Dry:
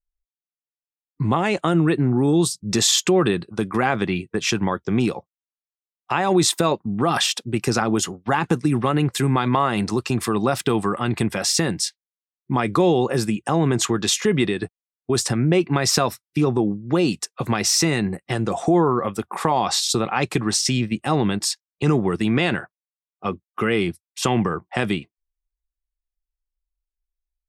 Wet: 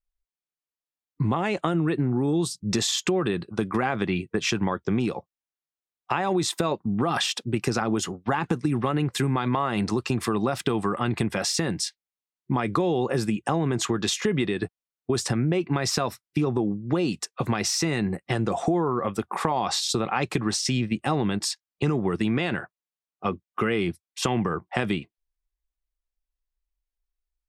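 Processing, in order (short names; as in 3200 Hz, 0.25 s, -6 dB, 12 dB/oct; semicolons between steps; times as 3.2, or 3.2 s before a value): compressor, threshold -20 dBFS, peak gain reduction 7.5 dB; high shelf 6600 Hz -7 dB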